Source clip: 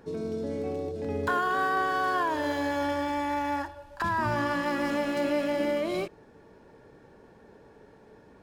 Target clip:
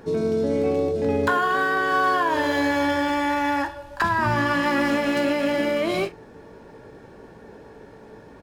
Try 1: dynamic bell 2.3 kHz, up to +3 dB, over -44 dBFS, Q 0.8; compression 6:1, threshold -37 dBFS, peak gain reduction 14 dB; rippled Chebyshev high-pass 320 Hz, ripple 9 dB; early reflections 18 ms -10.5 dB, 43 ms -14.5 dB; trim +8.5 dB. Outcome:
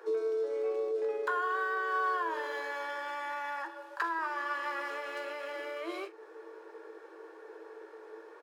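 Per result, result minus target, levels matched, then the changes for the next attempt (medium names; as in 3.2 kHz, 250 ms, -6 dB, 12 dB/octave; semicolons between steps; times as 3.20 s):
250 Hz band -12.5 dB; compression: peak gain reduction +8.5 dB
remove: rippled Chebyshev high-pass 320 Hz, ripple 9 dB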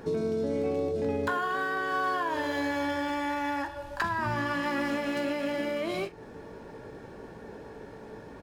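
compression: peak gain reduction +8.5 dB
change: compression 6:1, threshold -27 dBFS, peak gain reduction 5.5 dB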